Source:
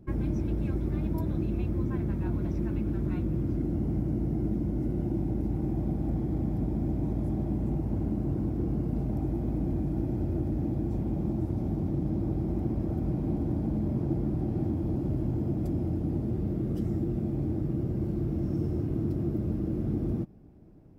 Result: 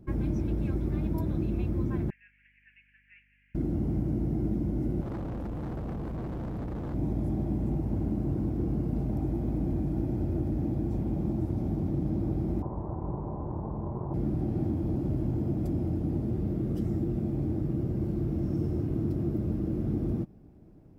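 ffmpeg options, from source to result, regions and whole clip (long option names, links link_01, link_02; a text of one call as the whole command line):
ffmpeg -i in.wav -filter_complex "[0:a]asettb=1/sr,asplit=3[link_01][link_02][link_03];[link_01]atrim=end=2.104[link_04];[link_02]atrim=start=2.1:end=3.55,asetpts=PTS-STARTPTS,afade=type=in:duration=0.004:curve=qsin,afade=type=out:start_time=1.446:duration=0.004:curve=qsin,asuperpass=centerf=2200:order=12:qfactor=1.8,aeval=exprs='val(0)+0.000355*(sin(2*PI*50*n/s)+sin(2*PI*2*50*n/s)/2+sin(2*PI*3*50*n/s)/3+sin(2*PI*4*50*n/s)/4+sin(2*PI*5*50*n/s)/5)':channel_layout=same[link_05];[link_03]atrim=start=3.546[link_06];[link_04][link_05]acrossfade=duration=0.004:curve1=hsin:curve2=qsin[link_07];[link_07][link_06]acrossfade=duration=0.004:curve1=qsin:curve2=hsin,asettb=1/sr,asplit=3[link_08][link_09][link_10];[link_08]atrim=end=5.014[link_11];[link_09]atrim=start=5.01:end=6.94,asetpts=PTS-STARTPTS,afade=type=in:duration=0.004:curve=qsin,afade=type=out:start_time=1.926:duration=0.004:curve=qsin,highpass=47,lowshelf=frequency=160:gain=5.5,volume=33dB,asoftclip=hard,volume=-33dB[link_12];[link_10]atrim=start=6.936[link_13];[link_11][link_12]acrossfade=duration=0.004:curve1=hsin:curve2=qsin[link_14];[link_14][link_13]acrossfade=duration=0.004:curve1=qsin:curve2=hsin,asettb=1/sr,asplit=3[link_15][link_16][link_17];[link_15]atrim=end=12.624[link_18];[link_16]atrim=start=12.62:end=14.14,asetpts=PTS-STARTPTS,afade=type=in:duration=0.004:curve=qsin,afade=type=out:start_time=1.516:duration=0.004:curve=qsin,equalizer=frequency=270:width_type=o:width=0.86:gain=-8.5,tremolo=f=240:d=0.71,lowpass=frequency=1000:width_type=q:width=5.8[link_19];[link_17]atrim=start=14.136[link_20];[link_18][link_19]acrossfade=duration=0.004:curve1=hsin:curve2=qsin[link_21];[link_21][link_20]acrossfade=duration=0.004:curve1=qsin:curve2=hsin" out.wav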